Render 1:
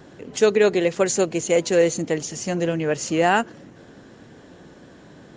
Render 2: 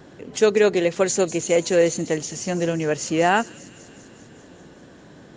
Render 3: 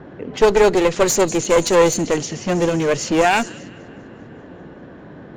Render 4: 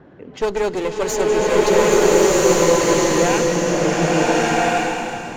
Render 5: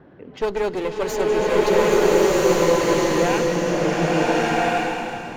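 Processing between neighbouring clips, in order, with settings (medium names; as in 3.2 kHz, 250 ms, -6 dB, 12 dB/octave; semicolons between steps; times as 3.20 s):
feedback echo behind a high-pass 197 ms, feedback 70%, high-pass 4.5 kHz, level -11 dB
level-controlled noise filter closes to 1.7 kHz, open at -16 dBFS; one-sided clip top -25.5 dBFS; trim +7.5 dB
swelling reverb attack 1390 ms, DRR -9 dB; trim -7.5 dB
peaking EQ 7 kHz -7.5 dB 0.69 oct; trim -2.5 dB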